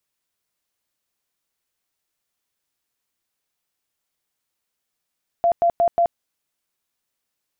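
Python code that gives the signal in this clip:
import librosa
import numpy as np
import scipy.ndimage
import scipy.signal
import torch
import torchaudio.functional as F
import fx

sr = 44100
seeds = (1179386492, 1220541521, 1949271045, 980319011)

y = fx.tone_burst(sr, hz=686.0, cycles=54, every_s=0.18, bursts=4, level_db=-13.5)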